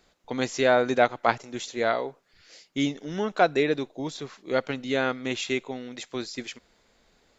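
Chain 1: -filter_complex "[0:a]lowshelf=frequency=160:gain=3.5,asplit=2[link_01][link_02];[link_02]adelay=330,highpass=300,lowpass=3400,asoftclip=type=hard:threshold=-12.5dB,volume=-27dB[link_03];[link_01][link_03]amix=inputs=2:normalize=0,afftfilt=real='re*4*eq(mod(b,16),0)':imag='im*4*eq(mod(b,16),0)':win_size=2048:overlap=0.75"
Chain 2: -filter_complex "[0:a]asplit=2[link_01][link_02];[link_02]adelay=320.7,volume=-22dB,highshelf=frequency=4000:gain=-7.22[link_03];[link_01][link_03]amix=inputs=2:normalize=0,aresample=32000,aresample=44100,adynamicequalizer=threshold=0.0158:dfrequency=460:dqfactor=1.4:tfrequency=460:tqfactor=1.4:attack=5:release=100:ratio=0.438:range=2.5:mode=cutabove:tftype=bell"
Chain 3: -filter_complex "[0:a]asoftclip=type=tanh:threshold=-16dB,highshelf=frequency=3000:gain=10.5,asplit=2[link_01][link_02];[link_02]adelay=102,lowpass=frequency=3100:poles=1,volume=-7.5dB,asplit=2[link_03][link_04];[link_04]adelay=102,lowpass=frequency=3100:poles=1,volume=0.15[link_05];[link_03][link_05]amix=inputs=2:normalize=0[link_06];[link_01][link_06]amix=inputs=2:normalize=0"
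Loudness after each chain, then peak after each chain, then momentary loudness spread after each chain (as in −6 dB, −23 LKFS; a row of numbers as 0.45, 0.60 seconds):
−29.0, −28.0, −27.0 LKFS; −6.5, −4.5, −11.0 dBFS; 21, 14, 12 LU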